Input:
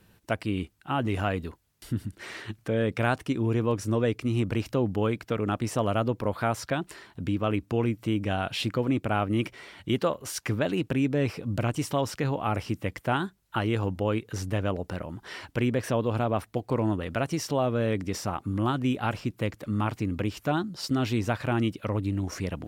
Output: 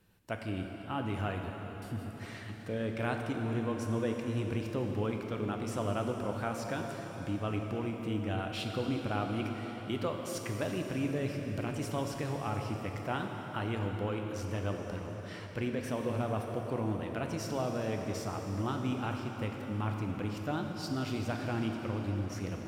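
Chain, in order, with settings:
dense smooth reverb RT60 4.9 s, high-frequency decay 0.85×, DRR 2 dB
level −9 dB

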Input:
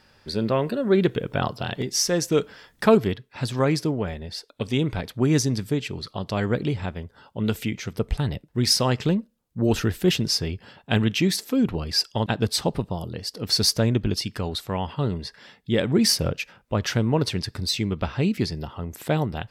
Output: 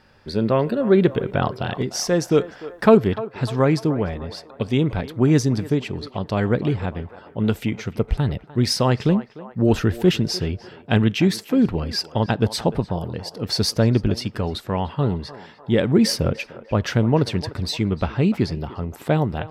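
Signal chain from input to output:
high-shelf EQ 3,100 Hz −9.5 dB
on a send: feedback echo with a band-pass in the loop 299 ms, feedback 57%, band-pass 900 Hz, level −13 dB
on the sum: level +4 dB

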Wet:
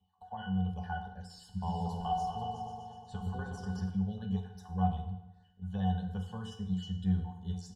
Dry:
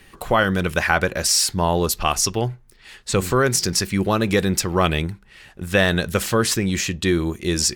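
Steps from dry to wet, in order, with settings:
time-frequency cells dropped at random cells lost 34%
low-shelf EQ 490 Hz −6.5 dB
notch filter 1,500 Hz, Q 6
comb filter 4.6 ms, depth 40%
automatic gain control
phaser with its sweep stopped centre 890 Hz, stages 4
resonances in every octave F#, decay 0.18 s
0:01.26–0:03.90: echo whose low-pass opens from repeat to repeat 122 ms, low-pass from 750 Hz, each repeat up 2 octaves, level −3 dB
feedback delay network reverb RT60 0.92 s, low-frequency decay 0.9×, high-frequency decay 0.8×, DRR 4 dB
level −2 dB

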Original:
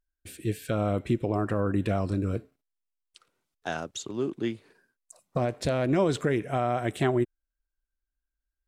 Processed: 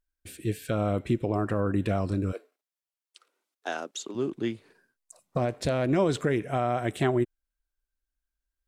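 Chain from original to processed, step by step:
0:02.31–0:04.14: high-pass filter 470 Hz → 220 Hz 24 dB per octave

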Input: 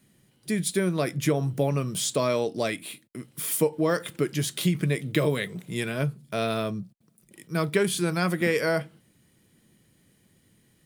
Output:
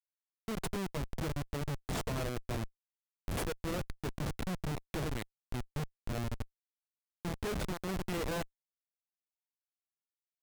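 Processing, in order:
comparator with hysteresis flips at −22.5 dBFS
wrong playback speed 24 fps film run at 25 fps
level −6.5 dB

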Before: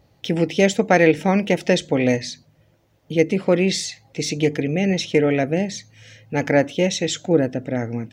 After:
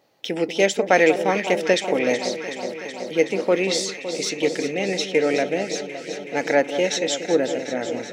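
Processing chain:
high-pass filter 360 Hz 12 dB per octave
on a send: delay that swaps between a low-pass and a high-pass 187 ms, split 1,200 Hz, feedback 87%, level −9.5 dB

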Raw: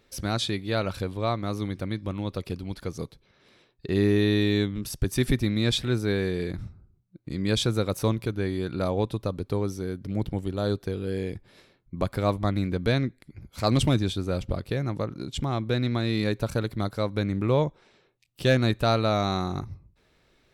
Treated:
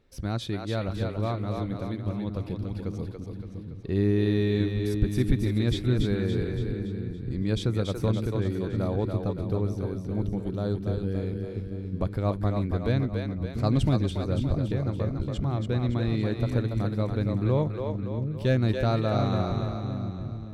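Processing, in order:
spectral tilt −2 dB per octave
echo with a time of its own for lows and highs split 320 Hz, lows 691 ms, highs 283 ms, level −4.5 dB
level −6 dB

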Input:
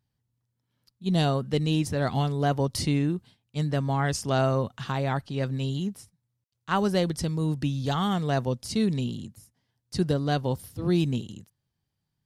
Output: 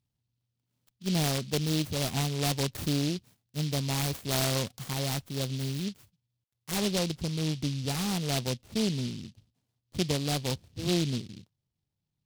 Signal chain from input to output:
phase distortion by the signal itself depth 0.42 ms
Butterworth low-pass 7,600 Hz 36 dB per octave, from 0:06.71 1,900 Hz
short delay modulated by noise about 3,800 Hz, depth 0.2 ms
level −3.5 dB

